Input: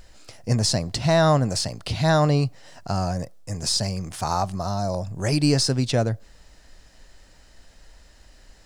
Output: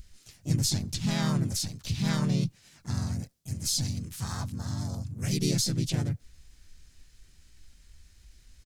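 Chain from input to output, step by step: amplifier tone stack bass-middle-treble 6-0-2; harmony voices -3 st -5 dB, +4 st -1 dB, +7 st -8 dB; trim +6.5 dB

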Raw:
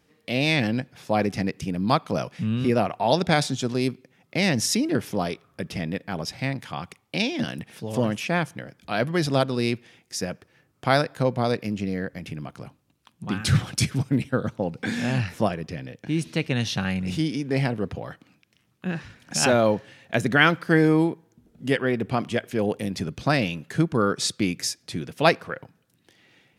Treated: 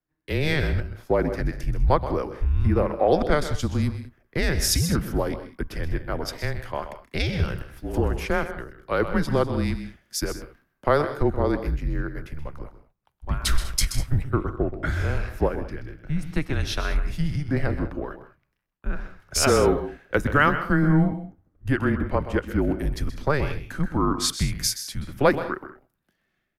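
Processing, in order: high-pass 130 Hz; high-order bell 4.9 kHz -9.5 dB 2.3 oct; compression 2.5:1, threshold -28 dBFS, peak gain reduction 11 dB; frequency shift -150 Hz; on a send: multi-tap echo 129/158/197/213 ms -10.5/-14.5/-15.5/-19 dB; on the sum: three bands expanded up and down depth 70%; trim +6.5 dB

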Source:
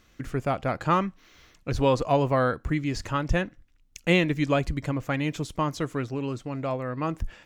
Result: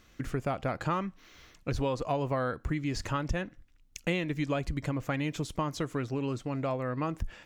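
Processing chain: compression 4:1, threshold -28 dBFS, peak gain reduction 10.5 dB

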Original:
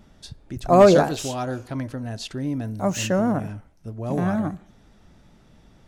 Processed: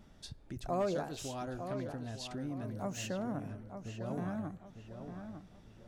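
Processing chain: compression 2:1, threshold -36 dBFS, peak gain reduction 15 dB; on a send: filtered feedback delay 902 ms, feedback 36%, low-pass 3.2 kHz, level -8 dB; on the sum: trim -6.5 dB

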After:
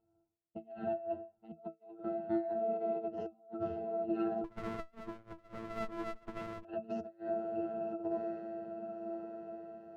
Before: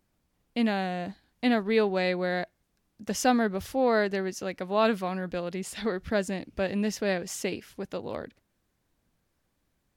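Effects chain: level-controlled noise filter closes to 1 kHz, open at -21.5 dBFS; touch-sensitive flanger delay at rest 6.9 ms, full sweep at -20.5 dBFS; trance gate "xx...xx.xx..x.xx" 137 bpm -24 dB; echo that smears into a reverb 1174 ms, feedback 51%, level -13.5 dB; robot voice 112 Hz; high-order bell 710 Hz +9 dB; reverberation RT60 0.35 s, pre-delay 44 ms, DRR 0.5 dB; compressor with a negative ratio -36 dBFS, ratio -0.5; dynamic bell 230 Hz, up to +4 dB, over -46 dBFS, Q 0.91; pitch-class resonator E, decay 0.15 s; 4.44–6.65 s: sliding maximum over 33 samples; trim +5.5 dB

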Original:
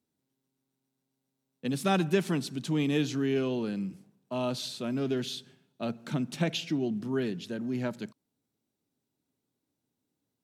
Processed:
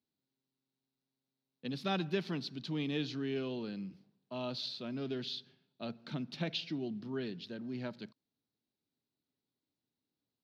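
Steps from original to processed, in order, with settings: resonant high shelf 6.1 kHz -12 dB, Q 3; trim -8.5 dB

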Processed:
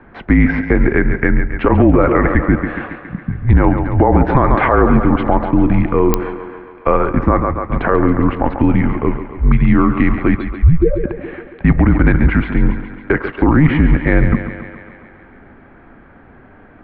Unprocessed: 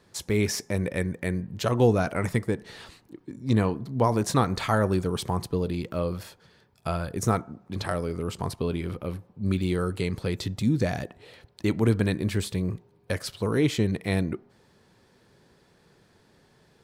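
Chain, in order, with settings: 10.39–11.04 s: spectral contrast enhancement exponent 4; thinning echo 138 ms, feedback 69%, high-pass 290 Hz, level -11 dB; mistuned SSB -150 Hz 160–2300 Hz; clicks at 6.14 s, -14 dBFS; loudness maximiser +20 dB; trim -1 dB

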